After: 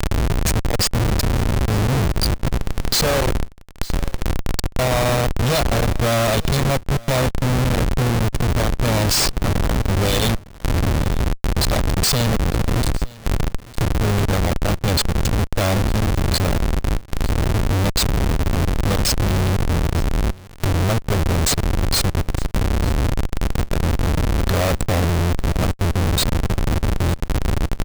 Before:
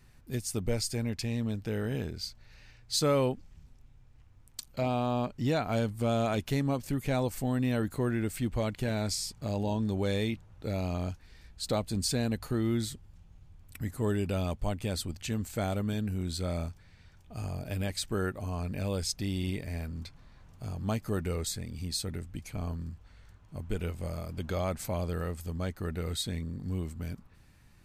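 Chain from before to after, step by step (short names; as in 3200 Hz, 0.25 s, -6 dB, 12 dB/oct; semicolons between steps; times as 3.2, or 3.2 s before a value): Wiener smoothing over 41 samples; wind noise 86 Hz -30 dBFS; band shelf 5400 Hz +13 dB; comb 1.7 ms, depth 92%; in parallel at -1 dB: compressor 16:1, threshold -28 dBFS, peak gain reduction 23.5 dB; on the sum: Schmitt trigger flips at -27.5 dBFS; on a send: echo 0.907 s -22.5 dB; on the sum: mismatched tape noise reduction encoder only; gain +4.5 dB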